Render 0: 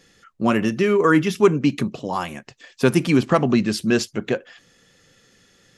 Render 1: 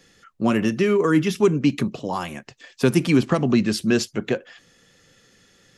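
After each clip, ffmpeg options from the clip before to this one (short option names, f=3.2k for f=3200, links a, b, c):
-filter_complex "[0:a]acrossover=split=410|3000[a][b][c];[b]acompressor=threshold=-23dB:ratio=6[d];[a][d][c]amix=inputs=3:normalize=0"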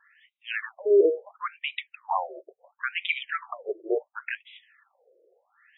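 -af "afftfilt=real='re*between(b*sr/1024,470*pow(2800/470,0.5+0.5*sin(2*PI*0.72*pts/sr))/1.41,470*pow(2800/470,0.5+0.5*sin(2*PI*0.72*pts/sr))*1.41)':imag='im*between(b*sr/1024,470*pow(2800/470,0.5+0.5*sin(2*PI*0.72*pts/sr))/1.41,470*pow(2800/470,0.5+0.5*sin(2*PI*0.72*pts/sr))*1.41)':win_size=1024:overlap=0.75,volume=2.5dB"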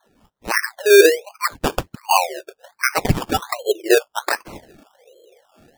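-af "dynaudnorm=f=140:g=5:m=13dB,acrusher=samples=17:mix=1:aa=0.000001:lfo=1:lforange=10.2:lforate=1.3"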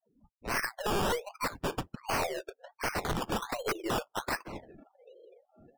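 -af "aeval=exprs='(mod(5.62*val(0)+1,2)-1)/5.62':c=same,aeval=exprs='(tanh(14.1*val(0)+0.2)-tanh(0.2))/14.1':c=same,afftdn=nr=34:nf=-49,volume=-4dB"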